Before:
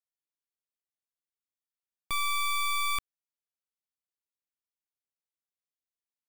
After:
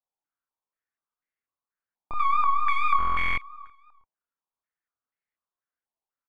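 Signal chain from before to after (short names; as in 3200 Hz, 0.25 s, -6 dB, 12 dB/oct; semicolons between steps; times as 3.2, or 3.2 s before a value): vibrato 4.3 Hz 90 cents; flange 1.3 Hz, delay 1.5 ms, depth 2.9 ms, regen +71%; doubler 27 ms -2 dB; feedback echo 0.341 s, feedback 36%, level -15 dB; stuck buffer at 2.98, samples 1024, times 16; stepped low-pass 4.1 Hz 880–2000 Hz; gain +3.5 dB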